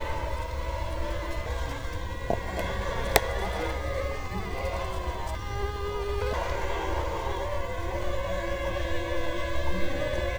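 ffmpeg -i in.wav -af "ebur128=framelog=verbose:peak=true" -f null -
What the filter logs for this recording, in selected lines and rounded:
Integrated loudness:
  I:         -31.5 LUFS
  Threshold: -41.5 LUFS
Loudness range:
  LRA:         1.6 LU
  Threshold: -51.2 LUFS
  LRA low:   -32.1 LUFS
  LRA high:  -30.4 LUFS
True peak:
  Peak:       -1.2 dBFS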